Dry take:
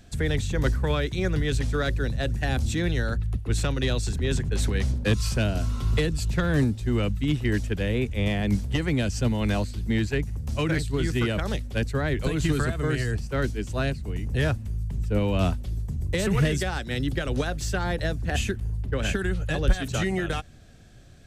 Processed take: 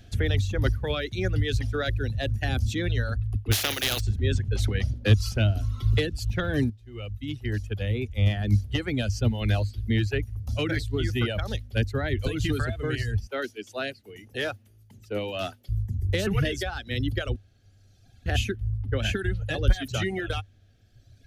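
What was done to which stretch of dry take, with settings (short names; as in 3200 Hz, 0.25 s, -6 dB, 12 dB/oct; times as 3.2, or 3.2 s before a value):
3.51–3.99 spectral contrast lowered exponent 0.28
6.7–9.81 fade in equal-power, from -12.5 dB
13.27–15.69 HPF 330 Hz
17.36–18.26 room tone
whole clip: reverb removal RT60 1.7 s; thirty-one-band EQ 100 Hz +12 dB, 160 Hz -9 dB, 1000 Hz -9 dB, 3150 Hz +4 dB, 8000 Hz -10 dB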